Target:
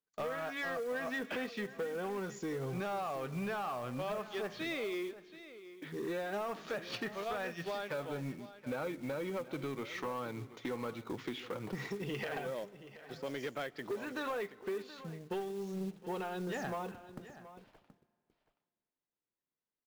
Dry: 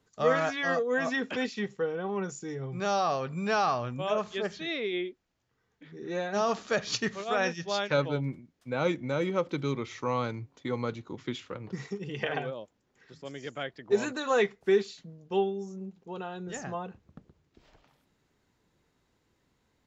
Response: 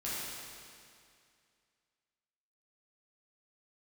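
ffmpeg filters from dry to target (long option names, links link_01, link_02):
-filter_complex "[0:a]agate=range=-33dB:threshold=-52dB:ratio=3:detection=peak,lowpass=4400,acrossover=split=3300[link_01][link_02];[link_02]acompressor=threshold=-52dB:ratio=4:attack=1:release=60[link_03];[link_01][link_03]amix=inputs=2:normalize=0,equalizer=frequency=63:width_type=o:width=2:gain=-13.5,acompressor=threshold=-40dB:ratio=12,acrusher=bits=4:mode=log:mix=0:aa=0.000001,asoftclip=type=tanh:threshold=-39dB,aecho=1:1:726:0.178,asplit=2[link_04][link_05];[1:a]atrim=start_sample=2205,adelay=132[link_06];[link_05][link_06]afir=irnorm=-1:irlink=0,volume=-26.5dB[link_07];[link_04][link_07]amix=inputs=2:normalize=0,volume=7.5dB"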